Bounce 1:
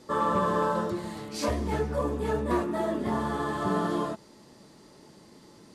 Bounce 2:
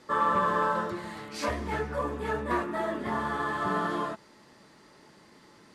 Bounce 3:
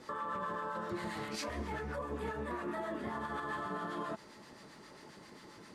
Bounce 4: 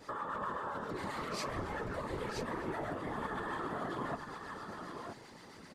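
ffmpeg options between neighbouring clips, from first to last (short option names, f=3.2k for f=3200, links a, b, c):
-af "equalizer=f=1.7k:w=0.67:g=10.5,volume=-5.5dB"
-filter_complex "[0:a]acompressor=threshold=-33dB:ratio=6,alimiter=level_in=8dB:limit=-24dB:level=0:latency=1:release=127,volume=-8dB,acrossover=split=930[a][b];[a]aeval=exprs='val(0)*(1-0.5/2+0.5/2*cos(2*PI*7.5*n/s))':c=same[c];[b]aeval=exprs='val(0)*(1-0.5/2-0.5/2*cos(2*PI*7.5*n/s))':c=same[d];[c][d]amix=inputs=2:normalize=0,volume=4dB"
-filter_complex "[0:a]asplit=2[a][b];[b]aecho=0:1:975:0.531[c];[a][c]amix=inputs=2:normalize=0,afftfilt=real='hypot(re,im)*cos(2*PI*random(0))':imag='hypot(re,im)*sin(2*PI*random(1))':win_size=512:overlap=0.75,volume=5.5dB"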